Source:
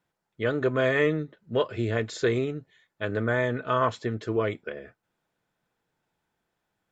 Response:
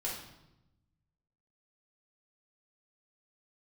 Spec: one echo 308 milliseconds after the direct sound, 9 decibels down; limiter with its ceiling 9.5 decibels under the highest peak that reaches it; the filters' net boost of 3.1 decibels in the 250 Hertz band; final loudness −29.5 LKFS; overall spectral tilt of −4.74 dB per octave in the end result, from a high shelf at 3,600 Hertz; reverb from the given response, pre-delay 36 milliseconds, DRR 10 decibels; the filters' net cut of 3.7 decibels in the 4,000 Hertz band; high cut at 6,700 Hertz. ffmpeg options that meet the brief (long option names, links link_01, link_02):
-filter_complex "[0:a]lowpass=6700,equalizer=frequency=250:width_type=o:gain=4,highshelf=frequency=3600:gain=5.5,equalizer=frequency=4000:width_type=o:gain=-8,alimiter=limit=-20dB:level=0:latency=1,aecho=1:1:308:0.355,asplit=2[link_01][link_02];[1:a]atrim=start_sample=2205,adelay=36[link_03];[link_02][link_03]afir=irnorm=-1:irlink=0,volume=-12.5dB[link_04];[link_01][link_04]amix=inputs=2:normalize=0,volume=1dB"